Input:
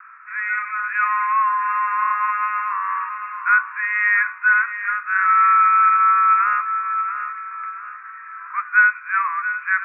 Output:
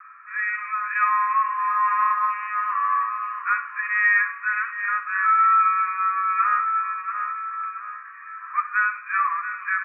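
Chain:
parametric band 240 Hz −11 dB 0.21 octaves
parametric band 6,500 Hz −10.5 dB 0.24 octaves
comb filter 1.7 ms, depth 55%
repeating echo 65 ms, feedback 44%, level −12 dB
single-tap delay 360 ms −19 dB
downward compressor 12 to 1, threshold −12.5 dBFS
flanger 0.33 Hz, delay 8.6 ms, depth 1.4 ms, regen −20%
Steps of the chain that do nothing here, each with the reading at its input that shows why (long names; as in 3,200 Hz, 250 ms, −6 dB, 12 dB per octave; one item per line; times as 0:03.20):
parametric band 240 Hz: nothing at its input below 910 Hz
parametric band 6,500 Hz: nothing at its input above 2,600 Hz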